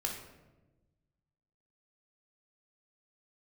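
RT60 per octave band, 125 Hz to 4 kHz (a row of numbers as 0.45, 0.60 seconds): 1.9, 1.6, 1.3, 0.95, 0.80, 0.65 seconds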